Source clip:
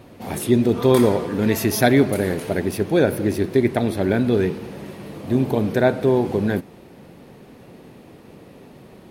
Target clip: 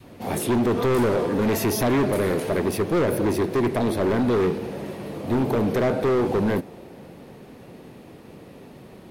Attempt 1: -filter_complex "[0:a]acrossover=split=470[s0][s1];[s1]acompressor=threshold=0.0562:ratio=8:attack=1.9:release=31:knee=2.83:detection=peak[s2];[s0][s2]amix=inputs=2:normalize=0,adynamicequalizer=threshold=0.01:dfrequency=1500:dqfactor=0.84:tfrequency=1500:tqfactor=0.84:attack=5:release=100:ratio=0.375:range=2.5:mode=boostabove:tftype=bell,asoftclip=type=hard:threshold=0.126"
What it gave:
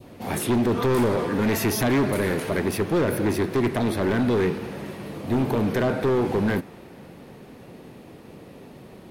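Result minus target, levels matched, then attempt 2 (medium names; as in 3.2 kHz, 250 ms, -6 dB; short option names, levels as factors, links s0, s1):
2 kHz band +2.5 dB
-filter_complex "[0:a]acrossover=split=470[s0][s1];[s1]acompressor=threshold=0.0562:ratio=8:attack=1.9:release=31:knee=2.83:detection=peak[s2];[s0][s2]amix=inputs=2:normalize=0,adynamicequalizer=threshold=0.01:dfrequency=560:dqfactor=0.84:tfrequency=560:tqfactor=0.84:attack=5:release=100:ratio=0.375:range=2.5:mode=boostabove:tftype=bell,asoftclip=type=hard:threshold=0.126"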